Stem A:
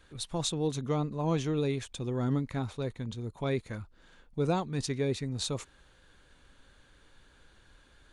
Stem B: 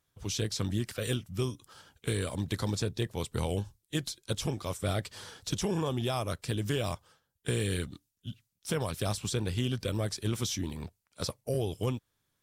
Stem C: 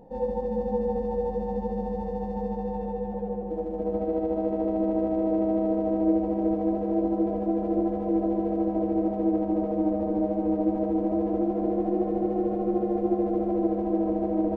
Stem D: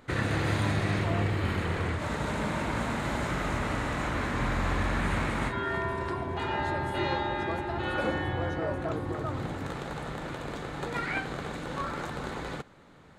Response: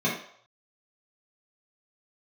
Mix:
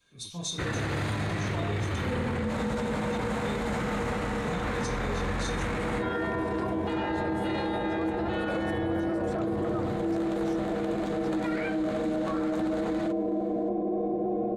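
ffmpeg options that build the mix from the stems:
-filter_complex "[0:a]crystalizer=i=7.5:c=0,volume=0.1,asplit=2[s0][s1];[s1]volume=0.668[s2];[1:a]alimiter=level_in=1.12:limit=0.0631:level=0:latency=1,volume=0.891,volume=0.133[s3];[2:a]adelay=1900,volume=0.355,asplit=2[s4][s5];[s5]volume=0.562[s6];[3:a]adelay=500,volume=1.06[s7];[4:a]atrim=start_sample=2205[s8];[s2][s6]amix=inputs=2:normalize=0[s9];[s9][s8]afir=irnorm=-1:irlink=0[s10];[s0][s3][s4][s7][s10]amix=inputs=5:normalize=0,alimiter=limit=0.0794:level=0:latency=1:release=18"

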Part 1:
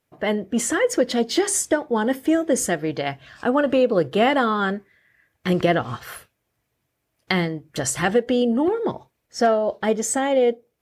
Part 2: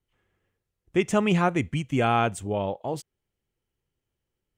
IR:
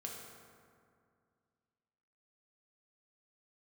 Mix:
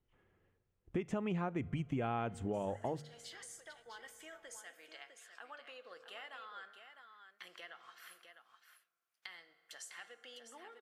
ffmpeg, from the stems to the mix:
-filter_complex "[0:a]highpass=1400,acompressor=threshold=0.0158:ratio=2.5,adynamicequalizer=threshold=0.00316:dfrequency=5000:dqfactor=0.7:tfrequency=5000:tqfactor=0.7:attack=5:release=100:ratio=0.375:range=2.5:mode=cutabove:tftype=highshelf,adelay=1950,volume=0.133,asplit=3[s0][s1][s2];[s1]volume=0.531[s3];[s2]volume=0.473[s4];[1:a]lowpass=f=1600:p=1,bandreject=f=50:t=h:w=6,bandreject=f=100:t=h:w=6,bandreject=f=150:t=h:w=6,acompressor=threshold=0.0158:ratio=2,volume=1.19,asplit=3[s5][s6][s7];[s6]volume=0.0668[s8];[s7]apad=whole_len=562766[s9];[s0][s9]sidechaincompress=threshold=0.00112:ratio=8:attack=16:release=167[s10];[2:a]atrim=start_sample=2205[s11];[s3][s8]amix=inputs=2:normalize=0[s12];[s12][s11]afir=irnorm=-1:irlink=0[s13];[s4]aecho=0:1:654:1[s14];[s10][s5][s13][s14]amix=inputs=4:normalize=0,acompressor=threshold=0.0178:ratio=3"

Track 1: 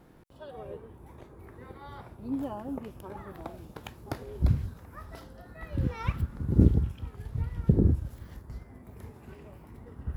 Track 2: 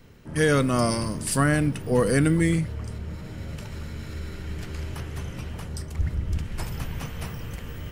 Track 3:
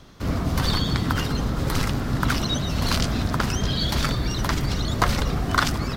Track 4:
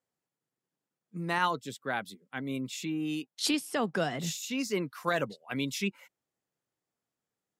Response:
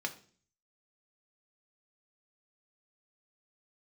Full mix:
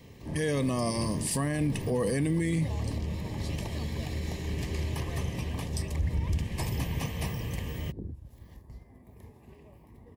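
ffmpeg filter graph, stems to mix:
-filter_complex "[0:a]acompressor=threshold=0.02:ratio=3,adelay=200,volume=0.562[s0];[1:a]highpass=54,volume=1.19[s1];[2:a]acrossover=split=160[s2][s3];[s3]acompressor=threshold=0.0158:ratio=2[s4];[s2][s4]amix=inputs=2:normalize=0,volume=0.126[s5];[3:a]volume=0.141[s6];[s0][s1][s5][s6]amix=inputs=4:normalize=0,asuperstop=centerf=1400:order=4:qfactor=2.8,alimiter=limit=0.0944:level=0:latency=1:release=51"

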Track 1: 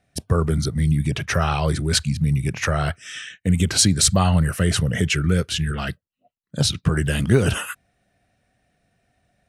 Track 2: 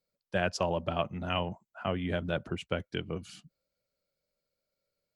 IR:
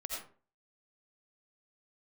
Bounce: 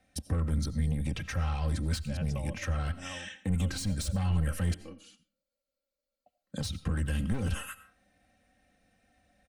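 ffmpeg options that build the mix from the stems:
-filter_complex "[0:a]asoftclip=type=tanh:threshold=0.141,volume=0.668,asplit=3[s0][s1][s2];[s0]atrim=end=4.74,asetpts=PTS-STARTPTS,afade=t=out:st=4.736:d=0.004:c=hsin[s3];[s1]atrim=start=4.74:end=6.26,asetpts=PTS-STARTPTS,volume=0[s4];[s2]atrim=start=6.26,asetpts=PTS-STARTPTS,afade=t=in:d=0.004:c=hsin[s5];[s3][s4][s5]concat=n=3:v=0:a=1,asplit=2[s6][s7];[s7]volume=0.158[s8];[1:a]aecho=1:1:3.5:0.52,adelay=1750,volume=0.316,asplit=2[s9][s10];[s10]volume=0.188[s11];[2:a]atrim=start_sample=2205[s12];[s8][s11]amix=inputs=2:normalize=0[s13];[s13][s12]afir=irnorm=-1:irlink=0[s14];[s6][s9][s14]amix=inputs=3:normalize=0,aecho=1:1:3.8:0.68,acrossover=split=170[s15][s16];[s16]acompressor=threshold=0.0126:ratio=6[s17];[s15][s17]amix=inputs=2:normalize=0"

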